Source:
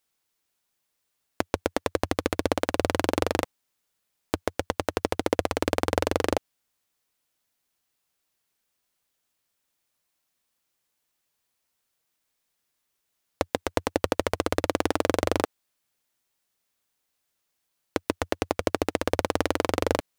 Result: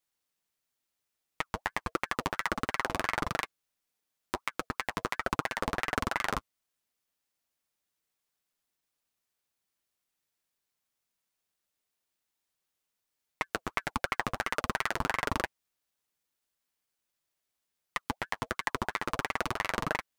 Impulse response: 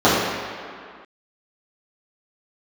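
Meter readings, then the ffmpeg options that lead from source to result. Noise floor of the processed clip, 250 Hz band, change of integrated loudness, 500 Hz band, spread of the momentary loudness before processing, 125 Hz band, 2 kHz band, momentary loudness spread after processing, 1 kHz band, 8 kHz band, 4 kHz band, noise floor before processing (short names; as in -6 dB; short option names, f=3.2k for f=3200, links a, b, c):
-85 dBFS, -10.5 dB, -5.5 dB, -13.0 dB, 6 LU, -7.0 dB, +1.0 dB, 6 LU, -2.5 dB, -6.5 dB, -5.0 dB, -78 dBFS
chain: -af "flanger=delay=5.4:depth=4.6:regen=-23:speed=1.5:shape=triangular,aeval=exprs='val(0)*sin(2*PI*1100*n/s+1100*0.5/2.9*sin(2*PI*2.9*n/s))':c=same"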